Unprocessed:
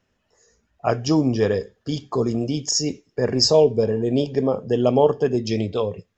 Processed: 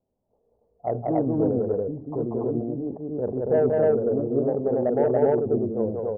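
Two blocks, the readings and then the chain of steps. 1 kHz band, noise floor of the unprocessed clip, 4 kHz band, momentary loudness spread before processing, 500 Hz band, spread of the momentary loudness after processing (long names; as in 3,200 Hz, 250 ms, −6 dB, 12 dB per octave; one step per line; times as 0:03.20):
−4.0 dB, −71 dBFS, below −40 dB, 10 LU, −2.0 dB, 10 LU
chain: Butterworth low-pass 810 Hz 36 dB per octave
low-shelf EQ 310 Hz −8 dB
soft clipping −9 dBFS, distortion −23 dB
loudspeakers that aren't time-aligned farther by 64 metres −2 dB, 97 metres 0 dB
level that may fall only so fast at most 110 dB per second
level −3 dB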